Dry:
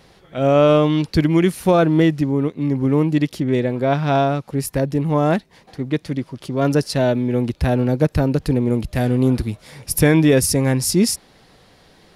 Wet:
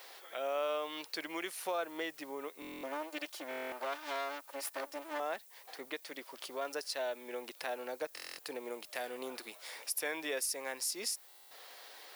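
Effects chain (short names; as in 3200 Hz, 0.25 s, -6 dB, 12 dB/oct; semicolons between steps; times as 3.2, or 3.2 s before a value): 2.81–5.2 minimum comb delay 3.3 ms; Bessel high-pass 740 Hz, order 4; compressor 2:1, threshold -48 dBFS, peak gain reduction 17.5 dB; added noise violet -60 dBFS; stuck buffer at 2.6/3.49/8.15/11.28, samples 1024, times 9; gain +1 dB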